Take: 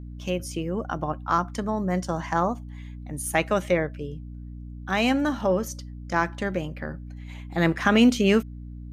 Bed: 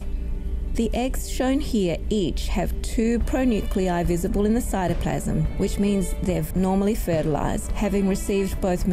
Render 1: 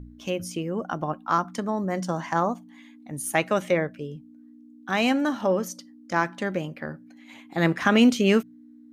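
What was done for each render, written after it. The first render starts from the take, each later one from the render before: de-hum 60 Hz, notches 3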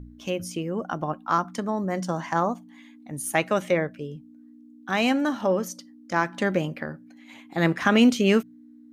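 6.34–6.83 gain +4 dB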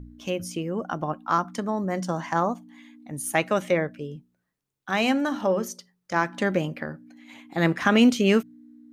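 4.16–6.2 notches 60/120/180/240/300/360/420 Hz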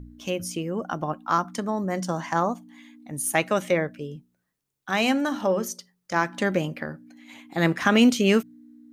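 high shelf 4700 Hz +5 dB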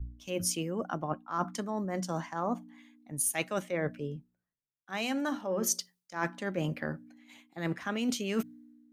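reverse; compressor 10:1, threshold -29 dBFS, peak gain reduction 16 dB; reverse; three-band expander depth 70%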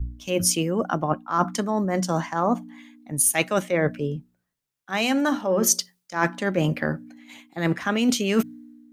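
gain +10 dB

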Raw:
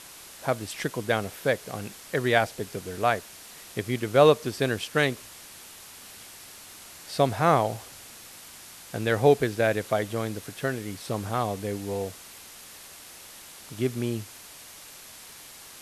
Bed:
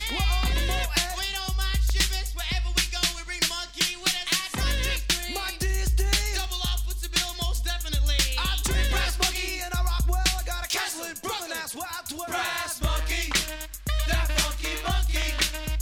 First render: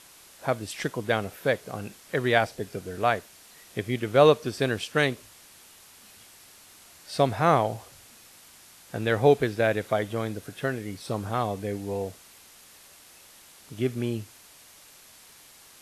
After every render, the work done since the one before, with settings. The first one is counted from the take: noise print and reduce 6 dB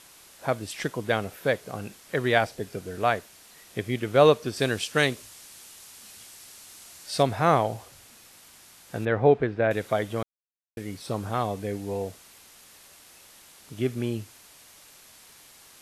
4.56–7.23 bell 7700 Hz +6 dB 2.2 oct; 9.05–9.71 LPF 2000 Hz; 10.23–10.77 mute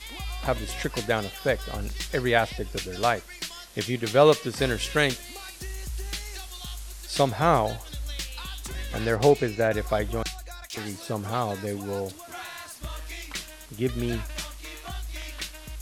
add bed -10.5 dB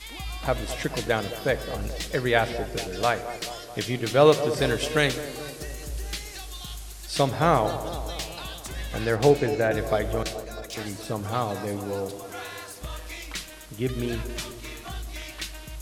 band-limited delay 0.216 s, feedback 62%, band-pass 510 Hz, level -11 dB; shoebox room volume 3600 m³, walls mixed, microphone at 0.55 m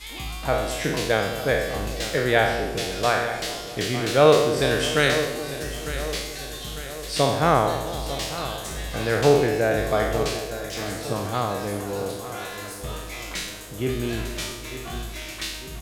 spectral trails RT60 0.89 s; feedback echo 0.9 s, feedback 52%, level -13 dB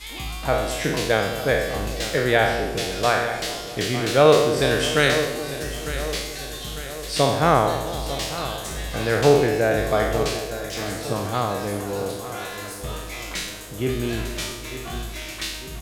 gain +1.5 dB; limiter -3 dBFS, peak gain reduction 2 dB

